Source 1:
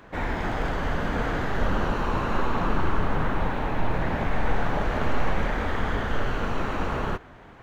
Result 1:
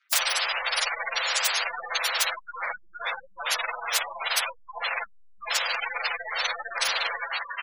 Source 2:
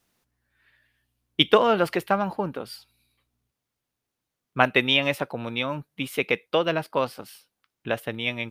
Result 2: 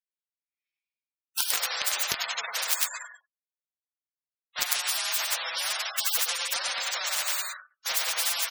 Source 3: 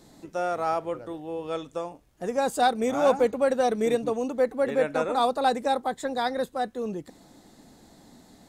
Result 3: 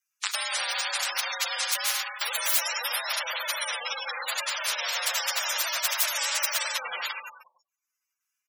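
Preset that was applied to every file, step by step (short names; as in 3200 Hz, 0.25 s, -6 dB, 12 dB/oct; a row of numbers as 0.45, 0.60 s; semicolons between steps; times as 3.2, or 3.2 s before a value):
inharmonic rescaling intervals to 115%; in parallel at -6 dB: companded quantiser 2-bit; on the sum: shoebox room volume 1300 m³, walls mixed, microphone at 0.81 m; vocal rider within 5 dB 2 s; high shelf 8400 Hz +3.5 dB; gate -39 dBFS, range -52 dB; on a send: echo 99 ms -6 dB; on the sum: spectral gate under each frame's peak -30 dB strong; elliptic high-pass 1400 Hz, stop band 80 dB; compressor 6:1, threshold -27 dBFS; spectral compressor 10:1; match loudness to -27 LUFS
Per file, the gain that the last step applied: +15.0, +8.5, +13.0 dB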